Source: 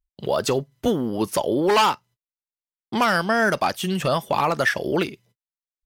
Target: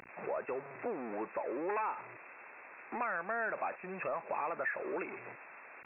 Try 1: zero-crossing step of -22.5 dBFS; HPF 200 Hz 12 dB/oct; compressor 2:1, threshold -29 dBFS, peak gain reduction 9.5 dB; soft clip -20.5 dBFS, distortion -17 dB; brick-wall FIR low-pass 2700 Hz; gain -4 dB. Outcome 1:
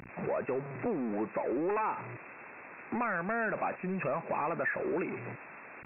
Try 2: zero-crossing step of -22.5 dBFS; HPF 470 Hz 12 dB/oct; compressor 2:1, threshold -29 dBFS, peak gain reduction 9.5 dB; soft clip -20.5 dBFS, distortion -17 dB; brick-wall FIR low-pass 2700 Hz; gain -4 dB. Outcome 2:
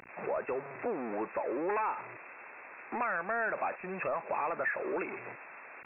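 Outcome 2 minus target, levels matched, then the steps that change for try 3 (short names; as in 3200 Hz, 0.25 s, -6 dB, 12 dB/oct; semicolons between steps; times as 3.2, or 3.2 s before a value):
compressor: peak gain reduction -4 dB
change: compressor 2:1, threshold -37.5 dBFS, peak gain reduction 14 dB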